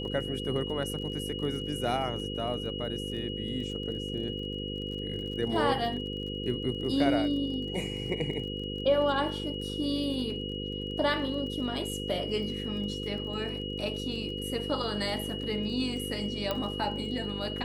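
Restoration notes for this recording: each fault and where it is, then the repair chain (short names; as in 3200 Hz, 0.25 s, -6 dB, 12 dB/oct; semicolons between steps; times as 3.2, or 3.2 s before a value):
buzz 50 Hz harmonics 10 -37 dBFS
crackle 30/s -40 dBFS
tone 2900 Hz -38 dBFS
16.51 pop -16 dBFS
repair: de-click; notch 2900 Hz, Q 30; de-hum 50 Hz, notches 10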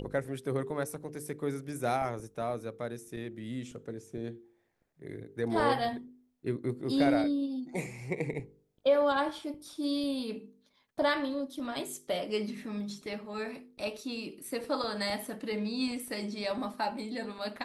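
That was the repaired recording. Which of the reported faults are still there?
none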